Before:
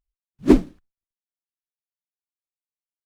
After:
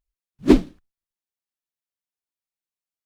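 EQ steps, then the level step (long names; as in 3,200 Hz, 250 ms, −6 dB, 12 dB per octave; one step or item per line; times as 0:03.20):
dynamic equaliser 3,600 Hz, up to +6 dB, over −45 dBFS, Q 1.1
0.0 dB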